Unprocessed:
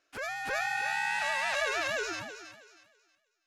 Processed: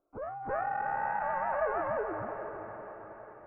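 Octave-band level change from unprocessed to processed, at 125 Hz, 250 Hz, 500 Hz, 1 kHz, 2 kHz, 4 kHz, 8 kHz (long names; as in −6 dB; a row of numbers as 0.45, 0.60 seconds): +6.0 dB, +4.0 dB, +4.0 dB, +3.0 dB, −9.0 dB, below −35 dB, below −40 dB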